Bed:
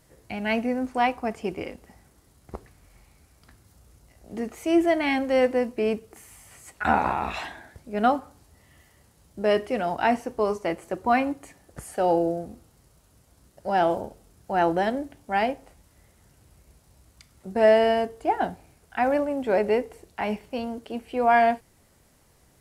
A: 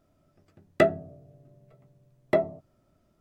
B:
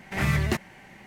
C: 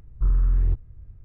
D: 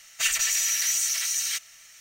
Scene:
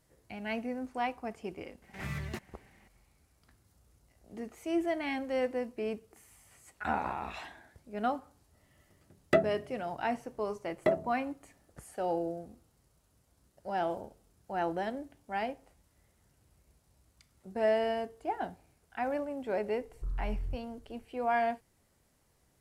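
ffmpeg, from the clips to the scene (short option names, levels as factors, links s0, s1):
-filter_complex "[0:a]volume=0.299[s0];[2:a]atrim=end=1.06,asetpts=PTS-STARTPTS,volume=0.2,afade=t=in:d=0.004:c=hsin,afade=t=out:st=1.056:d=0.004:c=hsin,adelay=1820[s1];[1:a]atrim=end=3.2,asetpts=PTS-STARTPTS,volume=0.596,afade=t=in:d=0.004:c=hsin,afade=t=out:st=3.196:d=0.004:c=hsin,adelay=8530[s2];[3:a]atrim=end=1.24,asetpts=PTS-STARTPTS,volume=0.168,afade=t=in:d=0.004:c=hsin,afade=t=out:st=1.236:d=0.004:c=hsin,adelay=19810[s3];[s0][s1][s2][s3]amix=inputs=4:normalize=0"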